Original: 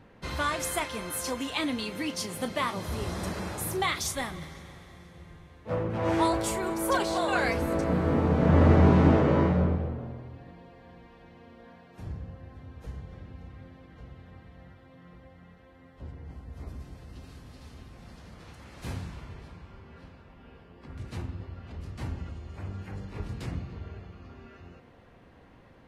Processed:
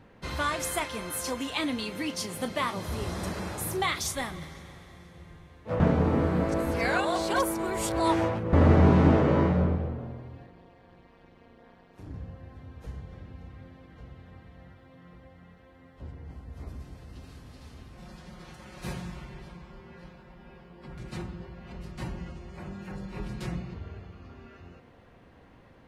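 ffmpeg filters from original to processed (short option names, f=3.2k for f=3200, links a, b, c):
-filter_complex "[0:a]asettb=1/sr,asplit=3[a][b][c];[a]atrim=end=10.464[d];[b]atrim=start=10.46:end=12.14,asetpts=PTS-STARTPTS,afade=t=in:d=0.004:c=qsin,afade=t=out:st=1.676:d=0.004:c=qsin,tremolo=f=200:d=0.919[e];[c]atrim=start=12.136[f];[d][e]acrossfade=d=0.004:c1=hsin:c2=qsin[g];[g][f]acrossfade=d=0.004:c1=qsin:c2=hsin,asettb=1/sr,asplit=3[h][i][j];[h]atrim=end=17.974[k];[i]atrim=start=17.97:end=23.74,asetpts=PTS-STARTPTS,afade=t=in:d=0.004:c=qsin,afade=t=out:st=5.766:d=0.004:c=qsin,aecho=1:1:5.5:0.86,atrim=end_sample=254457[l];[j]atrim=start=23.736[m];[k][l]acrossfade=d=0.004:c1=hsin:c2=qsin[n];[n][m]acrossfade=d=0.004:c1=qsin:c2=hsin,asplit=3[o][p][q];[o]atrim=end=5.802[r];[p]atrim=start=5.798:end=8.532,asetpts=PTS-STARTPTS,areverse[s];[q]atrim=start=8.528[t];[r][s]acrossfade=d=0.004:c1=hsin:c2=hsin[u];[u][t]acrossfade=d=0.004:c1=hsin:c2=hsin"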